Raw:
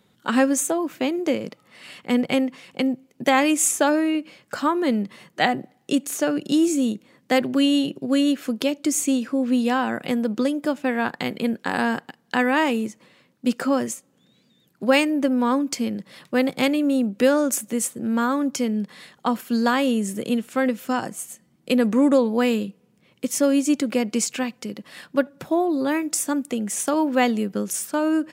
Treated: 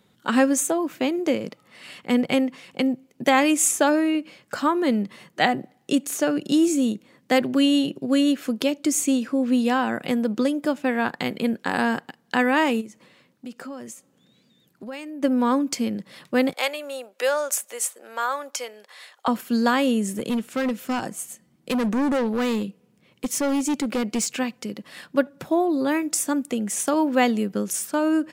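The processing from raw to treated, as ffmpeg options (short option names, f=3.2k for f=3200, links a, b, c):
-filter_complex "[0:a]asplit=3[a][b][c];[a]afade=t=out:st=12.8:d=0.02[d];[b]acompressor=threshold=-38dB:ratio=3:attack=3.2:release=140:knee=1:detection=peak,afade=t=in:st=12.8:d=0.02,afade=t=out:st=15.22:d=0.02[e];[c]afade=t=in:st=15.22:d=0.02[f];[d][e][f]amix=inputs=3:normalize=0,asettb=1/sr,asplit=3[g][h][i];[g]atrim=end=16.534[j];[h]atrim=start=16.53:end=19.28,asetpts=PTS-STARTPTS,afade=t=in:d=0.004:c=qsin,afade=t=out:st=2.746:d=0.004:c=qsin,highpass=f=560:w=0.5412,highpass=f=560:w=1.3066[k];[i]atrim=start=19.276[l];[j][k]acrossfade=d=0.004:c1=hsin:c2=qsin[m];[m][l]acrossfade=d=0.004:c1=qsin:c2=hsin,asettb=1/sr,asplit=3[n][o][p];[n]atrim=end=20.084[q];[o]atrim=start=20.08:end=24.28,asetpts=PTS-STARTPTS,afade=t=in:d=0.004:c=qsin,afade=t=out:st=4.196:d=0.004:c=qsin,asoftclip=type=hard:threshold=-20dB[r];[p]atrim=start=24.276[s];[q][r]acrossfade=d=0.004:c1=hsin:c2=qsin[t];[t][s]acrossfade=d=0.004:c1=qsin:c2=hsin"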